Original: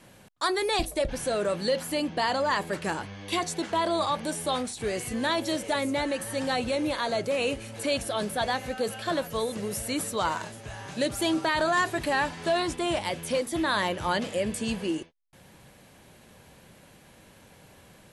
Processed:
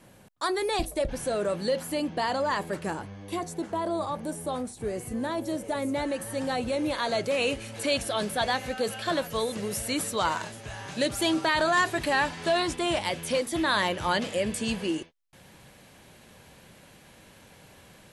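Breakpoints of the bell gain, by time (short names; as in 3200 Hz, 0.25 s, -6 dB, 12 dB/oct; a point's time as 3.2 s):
bell 3400 Hz 2.8 oct
2.63 s -4 dB
3.4 s -13 dB
5.58 s -13 dB
6.02 s -5 dB
6.66 s -5 dB
7.15 s +2.5 dB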